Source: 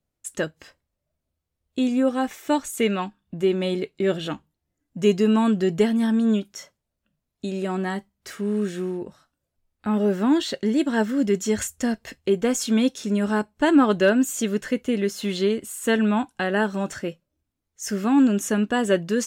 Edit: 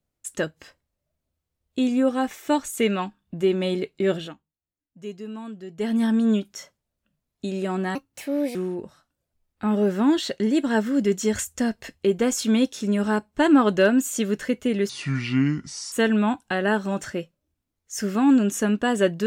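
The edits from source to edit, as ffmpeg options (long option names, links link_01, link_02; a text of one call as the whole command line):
ffmpeg -i in.wav -filter_complex "[0:a]asplit=7[link_01][link_02][link_03][link_04][link_05][link_06][link_07];[link_01]atrim=end=4.34,asetpts=PTS-STARTPTS,afade=type=out:start_time=4.16:duration=0.18:silence=0.149624[link_08];[link_02]atrim=start=4.34:end=5.77,asetpts=PTS-STARTPTS,volume=-16.5dB[link_09];[link_03]atrim=start=5.77:end=7.954,asetpts=PTS-STARTPTS,afade=type=in:duration=0.18:silence=0.149624[link_10];[link_04]atrim=start=7.95:end=8.78,asetpts=PTS-STARTPTS,asetrate=60858,aresample=44100[link_11];[link_05]atrim=start=8.776:end=15.124[link_12];[link_06]atrim=start=15.12:end=15.81,asetpts=PTS-STARTPTS,asetrate=29547,aresample=44100,atrim=end_sample=45416,asetpts=PTS-STARTPTS[link_13];[link_07]atrim=start=15.806[link_14];[link_08][link_09][link_10]concat=n=3:v=0:a=1[link_15];[link_15][link_11]acrossfade=duration=0.004:curve1=hsin:curve2=hsin[link_16];[link_16][link_12]acrossfade=duration=0.004:curve1=hsin:curve2=hsin[link_17];[link_17][link_13]acrossfade=duration=0.004:curve1=hsin:curve2=hsin[link_18];[link_18][link_14]acrossfade=duration=0.004:curve1=hsin:curve2=hsin" out.wav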